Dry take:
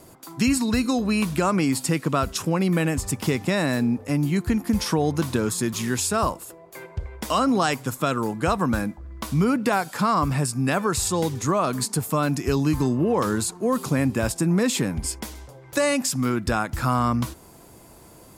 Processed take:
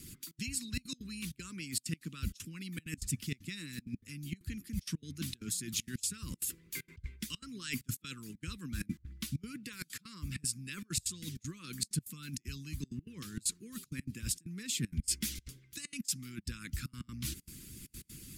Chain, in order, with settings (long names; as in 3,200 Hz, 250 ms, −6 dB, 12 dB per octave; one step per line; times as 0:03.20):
gate pattern "xxxx.xxxxx.x." 194 BPM −24 dB
reversed playback
downward compressor 16 to 1, threshold −34 dBFS, peak gain reduction 18.5 dB
reversed playback
Chebyshev band-stop filter 200–2,600 Hz, order 2
harmonic and percussive parts rebalanced harmonic −12 dB
level +6.5 dB